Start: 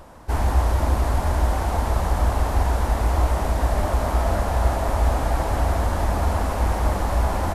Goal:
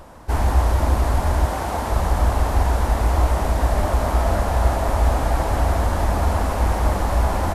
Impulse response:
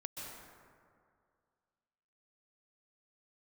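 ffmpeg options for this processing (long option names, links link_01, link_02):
-filter_complex "[0:a]asettb=1/sr,asplit=3[link_01][link_02][link_03];[link_01]atrim=end=1.454[link_04];[link_02]atrim=start=1.45:end=1.92,asetpts=PTS-STARTPTS,afade=type=in:duration=0.004:curve=qsin,afade=type=out:start_time=0.466:duration=0.004:curve=qsin,highpass=frequency=140:poles=1[link_05];[link_03]atrim=start=1.916[link_06];[link_04][link_05]acrossfade=duration=0.004:curve1=hsin:curve2=qsin[link_07];[link_07][link_06]acrossfade=duration=0.004:curve1=qsin:curve2=hsin,volume=2dB"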